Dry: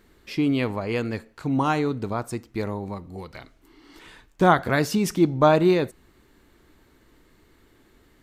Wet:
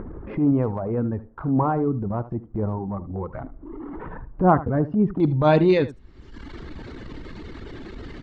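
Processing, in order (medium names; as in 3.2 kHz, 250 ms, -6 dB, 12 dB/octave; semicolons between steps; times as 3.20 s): reverb removal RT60 0.95 s; low-pass 1.2 kHz 24 dB/octave, from 5.20 s 5.2 kHz; bass shelf 350 Hz +8.5 dB; transient shaper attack -10 dB, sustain +4 dB; upward compressor, threshold -21 dBFS; delay 76 ms -16 dB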